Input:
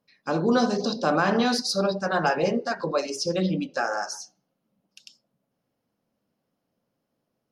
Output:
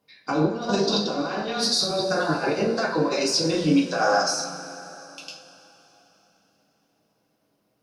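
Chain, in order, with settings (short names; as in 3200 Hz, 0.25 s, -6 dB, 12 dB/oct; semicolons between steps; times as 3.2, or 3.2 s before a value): low shelf 170 Hz -9 dB; negative-ratio compressor -28 dBFS, ratio -0.5; two-slope reverb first 0.31 s, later 3.4 s, from -18 dB, DRR -2.5 dB; speed mistake 25 fps video run at 24 fps; gain +1.5 dB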